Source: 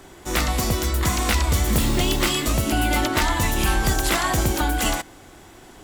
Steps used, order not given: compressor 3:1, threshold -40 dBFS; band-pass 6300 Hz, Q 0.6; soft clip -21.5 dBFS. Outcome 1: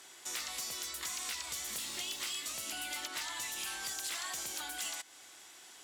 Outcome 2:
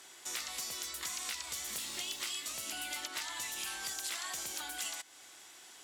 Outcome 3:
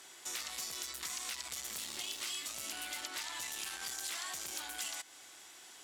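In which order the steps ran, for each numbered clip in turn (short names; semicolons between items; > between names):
band-pass > soft clip > compressor; band-pass > compressor > soft clip; soft clip > band-pass > compressor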